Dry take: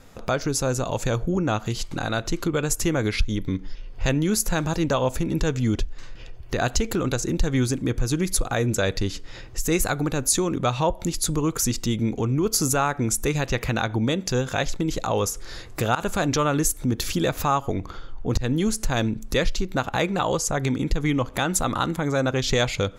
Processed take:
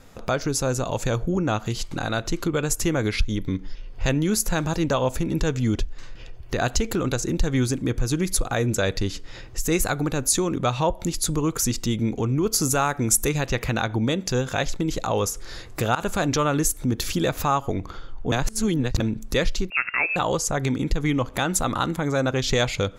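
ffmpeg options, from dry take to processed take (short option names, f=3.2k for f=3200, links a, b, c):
-filter_complex "[0:a]asettb=1/sr,asplit=3[a][b][c];[a]atrim=end=12.734[d];[b]atrim=start=12.73:end=13.29,asetpts=PTS-STARTPTS,afade=t=in:d=0.004:c=qsin,afade=t=out:st=0.556:d=0.004:c=qsin,highshelf=f=7.1k:g=10[e];[c]atrim=start=13.286[f];[d][e]acrossfade=d=0.004:c1=hsin:c2=qsin[g];[g][f]acrossfade=d=0.004:c1=qsin:c2=hsin,asettb=1/sr,asplit=3[h][i][j];[h]atrim=end=19.704[k];[i]atrim=start=19.7:end=20.16,asetpts=PTS-STARTPTS,afade=t=in:d=0.004:c=qsin,afade=t=out:st=0.456:d=0.004:c=qsin,lowpass=f=2.4k:t=q:w=0.5098,lowpass=f=2.4k:t=q:w=0.6013,lowpass=f=2.4k:t=q:w=0.9,lowpass=f=2.4k:t=q:w=2.563,afreqshift=-2800[l];[j]atrim=start=20.156[m];[k][l]acrossfade=d=0.004:c1=hsin:c2=qsin[n];[n][m]acrossfade=d=0.004:c1=qsin:c2=hsin,asplit=3[o][p][q];[o]atrim=end=18.322[r];[p]atrim=start=18.318:end=19.002,asetpts=PTS-STARTPTS,areverse[s];[q]atrim=start=18.998[t];[r][s]acrossfade=d=0.004:c1=hsin:c2=hsin[u];[u][t]acrossfade=d=0.004:c1=hsin:c2=hsin"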